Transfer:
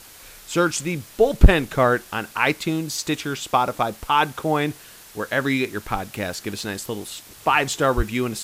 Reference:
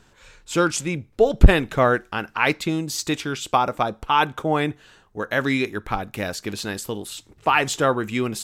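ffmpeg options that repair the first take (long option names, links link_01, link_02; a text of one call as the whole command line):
ffmpeg -i in.wav -filter_complex "[0:a]asplit=3[link_01][link_02][link_03];[link_01]afade=type=out:start_time=7.96:duration=0.02[link_04];[link_02]highpass=frequency=140:width=0.5412,highpass=frequency=140:width=1.3066,afade=type=in:start_time=7.96:duration=0.02,afade=type=out:start_time=8.08:duration=0.02[link_05];[link_03]afade=type=in:start_time=8.08:duration=0.02[link_06];[link_04][link_05][link_06]amix=inputs=3:normalize=0,afwtdn=0.0063" out.wav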